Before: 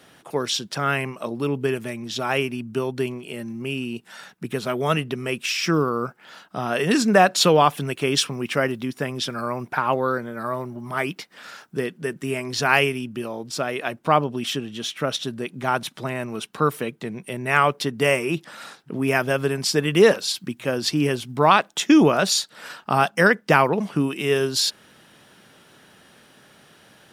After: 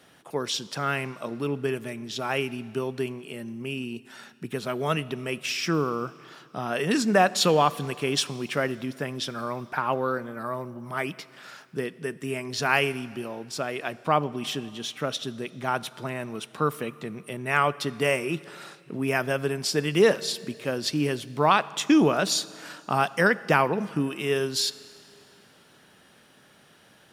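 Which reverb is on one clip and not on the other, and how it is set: Schroeder reverb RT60 2.4 s, combs from 27 ms, DRR 18.5 dB; gain -4.5 dB

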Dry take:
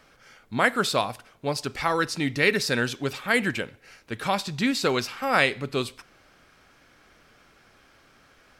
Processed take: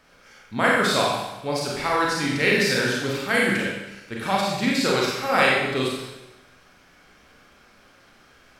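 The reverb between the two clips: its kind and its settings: Schroeder reverb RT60 0.99 s, combs from 31 ms, DRR -4 dB; gain -2 dB

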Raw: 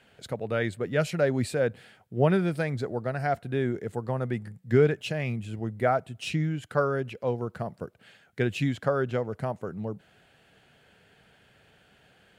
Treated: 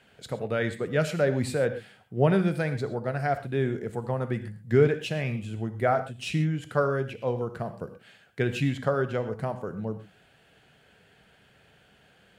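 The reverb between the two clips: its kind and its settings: non-linear reverb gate 0.15 s flat, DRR 9.5 dB

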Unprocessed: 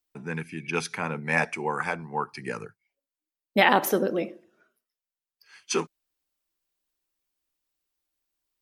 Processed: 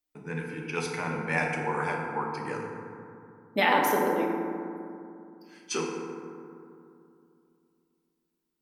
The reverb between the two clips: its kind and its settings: FDN reverb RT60 2.6 s, low-frequency decay 1.3×, high-frequency decay 0.35×, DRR -1.5 dB; gain -5.5 dB

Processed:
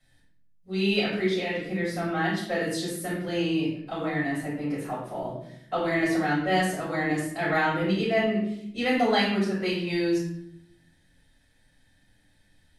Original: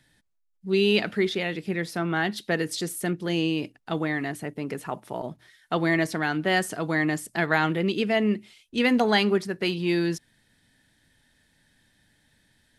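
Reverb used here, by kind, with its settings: shoebox room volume 140 m³, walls mixed, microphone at 5.4 m; gain -16.5 dB

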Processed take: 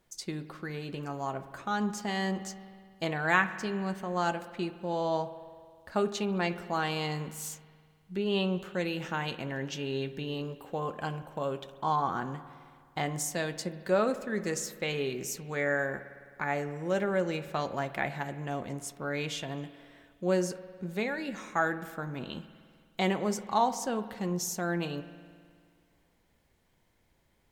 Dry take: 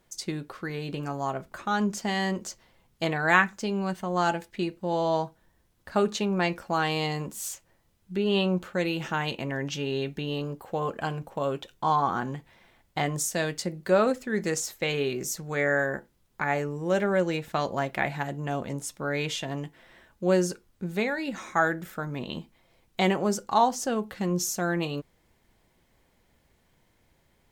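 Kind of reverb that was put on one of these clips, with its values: spring tank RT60 2 s, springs 52 ms, chirp 20 ms, DRR 13 dB; gain -4.5 dB

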